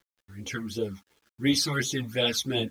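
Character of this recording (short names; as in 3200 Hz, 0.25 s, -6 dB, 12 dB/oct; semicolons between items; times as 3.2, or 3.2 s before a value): phasing stages 12, 2.8 Hz, lowest notch 470–1700 Hz; a quantiser's noise floor 10-bit, dither none; a shimmering, thickened sound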